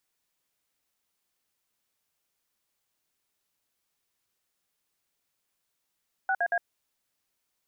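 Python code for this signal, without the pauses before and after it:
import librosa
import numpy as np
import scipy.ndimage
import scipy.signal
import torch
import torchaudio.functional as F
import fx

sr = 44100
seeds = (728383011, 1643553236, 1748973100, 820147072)

y = fx.dtmf(sr, digits='6AA', tone_ms=59, gap_ms=56, level_db=-26.0)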